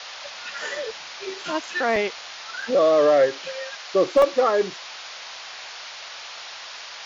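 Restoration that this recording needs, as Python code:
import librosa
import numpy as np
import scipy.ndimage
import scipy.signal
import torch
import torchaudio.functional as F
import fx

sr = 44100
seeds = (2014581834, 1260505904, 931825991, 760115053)

y = fx.fix_declip(x, sr, threshold_db=-9.5)
y = fx.fix_interpolate(y, sr, at_s=(1.96, 2.62, 4.22), length_ms=2.0)
y = fx.noise_reduce(y, sr, print_start_s=6.5, print_end_s=7.0, reduce_db=28.0)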